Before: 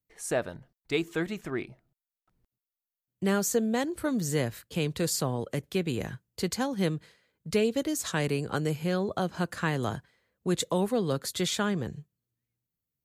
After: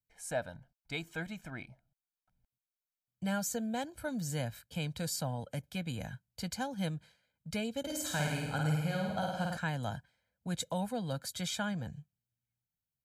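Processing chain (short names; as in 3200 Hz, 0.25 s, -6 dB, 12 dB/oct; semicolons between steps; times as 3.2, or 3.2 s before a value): comb 1.3 ms, depth 90%; 7.79–9.57 flutter echo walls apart 9 m, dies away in 1.1 s; gain -9 dB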